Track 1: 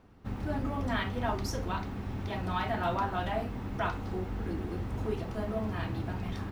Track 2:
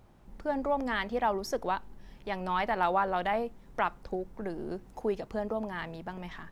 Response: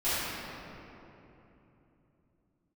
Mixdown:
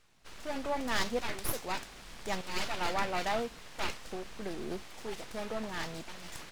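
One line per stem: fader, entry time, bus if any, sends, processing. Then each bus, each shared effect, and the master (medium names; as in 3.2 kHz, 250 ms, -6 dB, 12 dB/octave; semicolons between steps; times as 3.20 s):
-1.5 dB, 0.00 s, no send, frequency weighting ITU-R 468; full-wave rectifier
-1.0 dB, 0.00 s, no send, tremolo saw up 0.83 Hz, depth 90%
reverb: none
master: none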